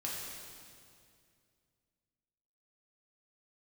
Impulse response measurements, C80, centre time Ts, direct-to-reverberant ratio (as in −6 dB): 1.0 dB, 117 ms, −5.5 dB